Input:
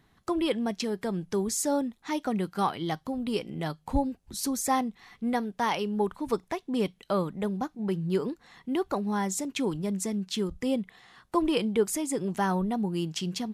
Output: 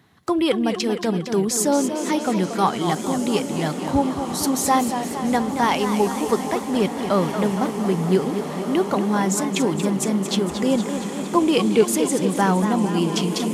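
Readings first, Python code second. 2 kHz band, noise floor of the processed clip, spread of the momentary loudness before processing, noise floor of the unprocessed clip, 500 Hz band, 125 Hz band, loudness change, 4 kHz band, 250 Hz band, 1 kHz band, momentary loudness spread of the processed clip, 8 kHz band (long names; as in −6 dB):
+9.0 dB, −30 dBFS, 5 LU, −66 dBFS, +9.0 dB, +8.5 dB, +8.5 dB, +8.5 dB, +9.0 dB, +9.0 dB, 5 LU, +9.0 dB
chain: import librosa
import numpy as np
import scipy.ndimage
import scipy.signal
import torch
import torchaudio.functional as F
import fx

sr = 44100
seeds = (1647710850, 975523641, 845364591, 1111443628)

y = scipy.signal.sosfilt(scipy.signal.butter(4, 76.0, 'highpass', fs=sr, output='sos'), x)
y = fx.echo_diffused(y, sr, ms=1648, feedback_pct=59, wet_db=-10.0)
y = fx.echo_warbled(y, sr, ms=231, feedback_pct=64, rate_hz=2.8, cents=142, wet_db=-9.0)
y = y * 10.0 ** (7.5 / 20.0)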